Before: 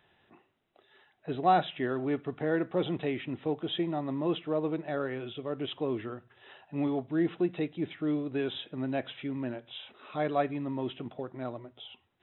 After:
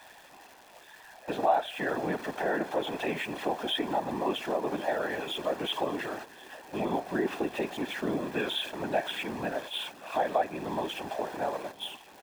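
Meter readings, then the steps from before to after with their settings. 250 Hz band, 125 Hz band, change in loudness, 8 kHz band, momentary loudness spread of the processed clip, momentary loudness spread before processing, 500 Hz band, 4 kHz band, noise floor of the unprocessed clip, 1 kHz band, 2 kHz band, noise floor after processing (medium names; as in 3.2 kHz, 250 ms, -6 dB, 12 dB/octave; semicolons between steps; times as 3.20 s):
-3.0 dB, -6.0 dB, +0.5 dB, no reading, 10 LU, 11 LU, +1.5 dB, +6.5 dB, -71 dBFS, +2.5 dB, +6.0 dB, -53 dBFS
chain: jump at every zero crossing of -40 dBFS; gate -42 dBFS, range -14 dB; high-pass 350 Hz 24 dB/octave; treble shelf 2.2 kHz -8 dB; comb 1.2 ms, depth 60%; compression 2.5:1, threshold -35 dBFS, peak gain reduction 12 dB; whisper effect; crackle 370 per s -51 dBFS; feedback delay 1079 ms, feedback 52%, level -22 dB; trim +8 dB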